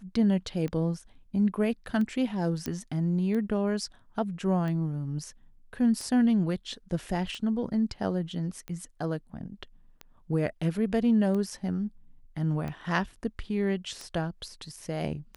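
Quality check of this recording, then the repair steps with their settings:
scratch tick 45 rpm −24 dBFS
0:02.66: click −18 dBFS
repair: click removal

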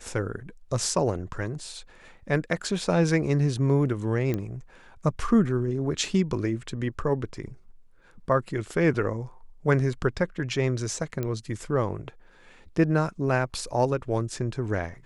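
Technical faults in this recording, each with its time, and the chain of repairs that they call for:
0:04.34: click −16 dBFS
0:11.23: click −17 dBFS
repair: click removal

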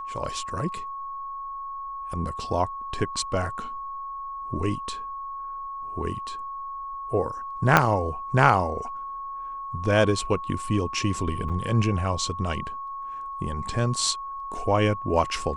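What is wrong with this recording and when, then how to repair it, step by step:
whistle 1,100 Hz −32 dBFS
0:07.77: click −2 dBFS
0:11.49–0:11.50: drop-out 6.8 ms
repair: click removal
notch filter 1,100 Hz, Q 30
repair the gap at 0:11.49, 6.8 ms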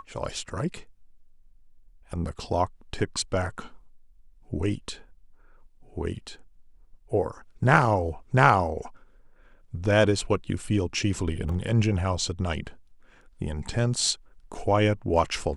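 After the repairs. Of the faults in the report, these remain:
0:07.77: click

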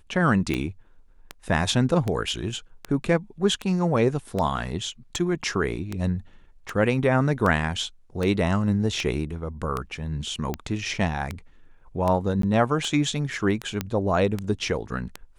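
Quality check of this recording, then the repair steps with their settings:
scratch tick 78 rpm −14 dBFS
0:12.42–0:12.43: drop-out 13 ms
0:13.81: click −11 dBFS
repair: click removal
repair the gap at 0:12.42, 13 ms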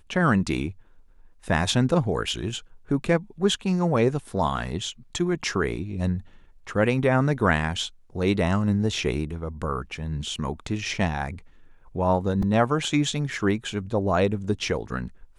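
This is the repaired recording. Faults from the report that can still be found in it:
none of them is left

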